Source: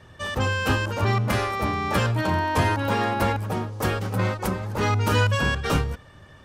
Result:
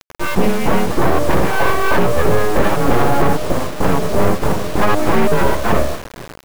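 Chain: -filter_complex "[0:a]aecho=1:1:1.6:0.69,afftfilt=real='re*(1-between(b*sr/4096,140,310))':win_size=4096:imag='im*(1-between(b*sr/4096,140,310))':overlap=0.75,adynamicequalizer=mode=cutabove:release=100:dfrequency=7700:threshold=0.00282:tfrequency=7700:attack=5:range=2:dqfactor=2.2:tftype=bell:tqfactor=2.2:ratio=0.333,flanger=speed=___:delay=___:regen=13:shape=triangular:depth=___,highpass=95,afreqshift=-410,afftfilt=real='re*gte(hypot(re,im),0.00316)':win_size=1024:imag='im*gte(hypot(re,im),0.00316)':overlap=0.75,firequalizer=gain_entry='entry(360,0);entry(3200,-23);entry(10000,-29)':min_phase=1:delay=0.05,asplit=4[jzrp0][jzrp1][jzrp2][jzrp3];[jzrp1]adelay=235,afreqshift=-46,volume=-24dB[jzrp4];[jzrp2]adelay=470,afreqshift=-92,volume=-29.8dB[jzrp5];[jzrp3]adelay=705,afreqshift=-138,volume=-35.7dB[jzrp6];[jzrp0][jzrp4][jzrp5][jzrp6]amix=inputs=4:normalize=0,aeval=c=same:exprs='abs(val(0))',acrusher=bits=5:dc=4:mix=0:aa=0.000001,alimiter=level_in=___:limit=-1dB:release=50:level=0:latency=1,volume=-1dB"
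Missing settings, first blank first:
0.81, 4.8, 1.5, 19.5dB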